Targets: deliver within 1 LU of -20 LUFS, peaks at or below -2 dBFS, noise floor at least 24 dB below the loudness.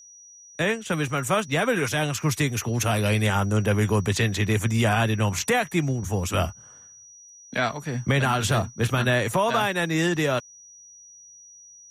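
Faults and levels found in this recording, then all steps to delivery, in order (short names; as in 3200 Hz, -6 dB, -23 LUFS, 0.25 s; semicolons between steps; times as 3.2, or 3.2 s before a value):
steady tone 5800 Hz; tone level -46 dBFS; loudness -24.0 LUFS; peak -10.5 dBFS; loudness target -20.0 LUFS
-> notch 5800 Hz, Q 30; gain +4 dB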